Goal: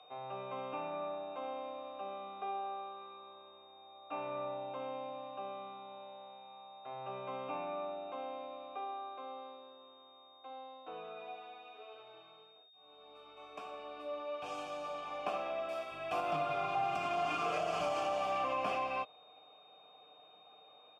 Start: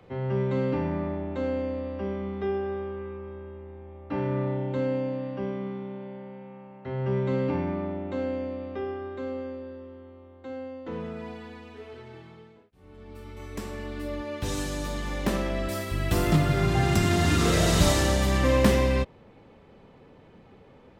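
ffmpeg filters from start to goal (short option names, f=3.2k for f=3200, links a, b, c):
-filter_complex "[0:a]asuperstop=centerf=3800:order=20:qfactor=5.9,equalizer=f=1.7k:w=0.32:g=9,aecho=1:1:6.6:0.46,aeval=exprs='val(0)+0.01*sin(2*PI*3700*n/s)':c=same,asplit=3[a][b][c];[a]bandpass=f=730:t=q:w=8,volume=0dB[d];[b]bandpass=f=1.09k:t=q:w=8,volume=-6dB[e];[c]bandpass=f=2.44k:t=q:w=8,volume=-9dB[f];[d][e][f]amix=inputs=3:normalize=0,highshelf=f=5.9k:g=8.5,acrossover=split=320[g][h];[h]alimiter=limit=-24dB:level=0:latency=1:release=91[i];[g][i]amix=inputs=2:normalize=0,volume=-2.5dB"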